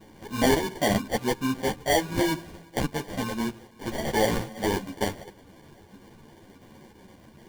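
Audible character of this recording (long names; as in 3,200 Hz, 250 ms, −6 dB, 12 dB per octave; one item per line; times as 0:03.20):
phaser sweep stages 6, 2.7 Hz, lowest notch 670–1,900 Hz
aliases and images of a low sample rate 1,300 Hz, jitter 0%
a shimmering, thickened sound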